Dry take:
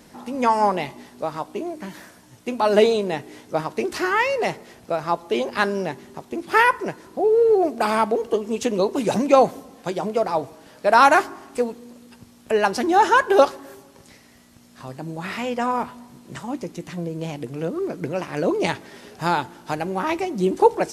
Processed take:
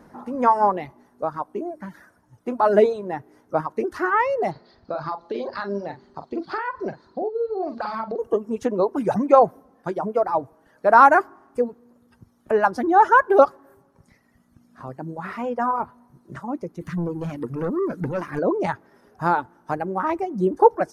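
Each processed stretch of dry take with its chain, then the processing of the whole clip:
0:04.51–0:08.19: low-pass with resonance 4,400 Hz, resonance Q 7.9 + downward compressor 10 to 1, threshold −23 dBFS + double-tracking delay 45 ms −6 dB
0:16.81–0:18.39: parametric band 770 Hz −9.5 dB 1.1 octaves + leveller curve on the samples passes 2
whole clip: notch filter 7,600 Hz, Q 7.9; reverb reduction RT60 1.7 s; high shelf with overshoot 2,000 Hz −12 dB, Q 1.5

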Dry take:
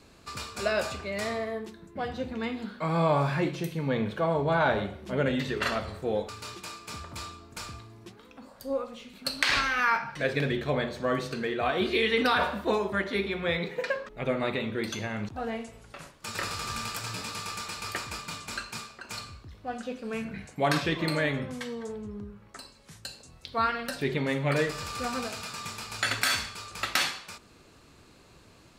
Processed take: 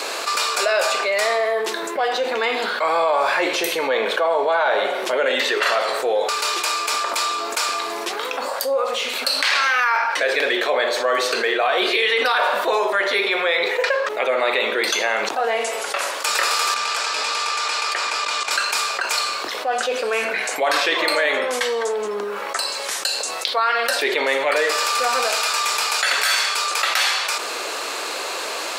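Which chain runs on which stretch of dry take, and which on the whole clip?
0:16.74–0:18.51: low-pass filter 6,800 Hz + output level in coarse steps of 15 dB
whole clip: high-pass filter 480 Hz 24 dB per octave; boost into a limiter +19 dB; envelope flattener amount 70%; level −10.5 dB

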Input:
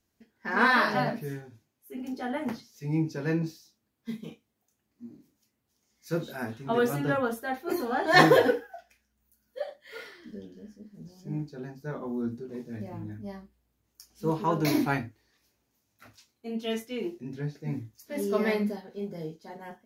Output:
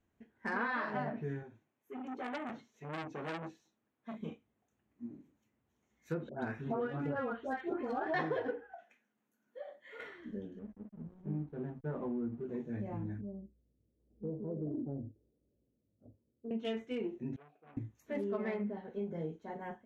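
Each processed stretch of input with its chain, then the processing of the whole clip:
0:01.43–0:04.21: high-pass filter 290 Hz 6 dB per octave + high-shelf EQ 10,000 Hz −8.5 dB + saturating transformer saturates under 2,300 Hz
0:06.29–0:08.14: low-pass filter 9,500 Hz + all-pass dispersion highs, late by 145 ms, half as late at 1,700 Hz
0:08.74–0:10.00: high-pass filter 180 Hz 24 dB per octave + downward compressor 2 to 1, threshold −50 dBFS + double-tracking delay 21 ms −11 dB
0:10.59–0:12.44: low-pass filter 1,100 Hz 6 dB per octave + slack as between gear wheels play −50.5 dBFS
0:13.21–0:16.51: Chebyshev low-pass filter 550 Hz, order 4 + downward compressor 2 to 1, threshold −42 dBFS
0:17.36–0:17.77: gap after every zero crossing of 0.075 ms + formant filter a + saturating transformer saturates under 1,600 Hz
whole clip: adaptive Wiener filter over 9 samples; treble cut that deepens with the level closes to 2,500 Hz, closed at −24.5 dBFS; downward compressor 5 to 1, threshold −34 dBFS

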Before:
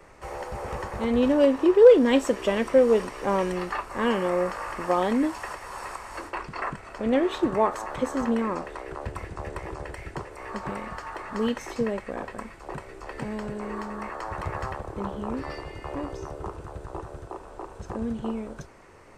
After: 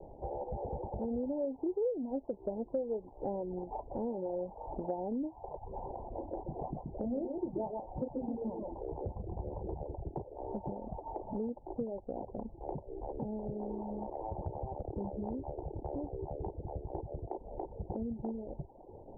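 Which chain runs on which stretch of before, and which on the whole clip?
0:05.58–0:09.81: auto-filter notch saw up 4.8 Hz 290–1,700 Hz + double-tracking delay 33 ms −9 dB + single-tap delay 129 ms −4.5 dB
whole clip: Butterworth low-pass 880 Hz 96 dB per octave; reverb reduction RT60 0.62 s; downward compressor 4 to 1, threshold −40 dBFS; level +3.5 dB

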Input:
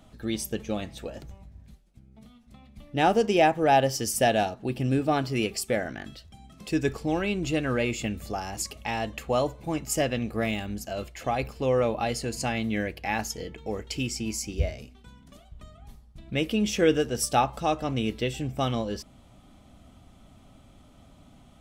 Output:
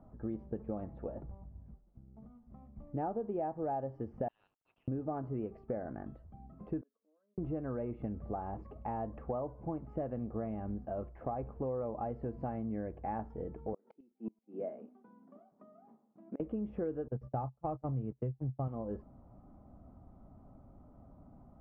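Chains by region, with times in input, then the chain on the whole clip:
0:04.28–0:04.88: output level in coarse steps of 10 dB + Butterworth high-pass 2,800 Hz + leveller curve on the samples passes 3
0:06.81–0:07.38: phaser with its sweep stopped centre 540 Hz, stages 8 + gate with flip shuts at −32 dBFS, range −40 dB + linear-phase brick-wall high-pass 210 Hz
0:13.73–0:16.40: Chebyshev band-pass filter 210–8,600 Hz, order 4 + gate with flip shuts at −23 dBFS, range −30 dB
0:17.08–0:18.68: noise gate −31 dBFS, range −33 dB + parametric band 130 Hz +12.5 dB 0.52 octaves
whole clip: low-pass filter 1,100 Hz 24 dB per octave; downward compressor 6 to 1, threshold −31 dBFS; level −3 dB

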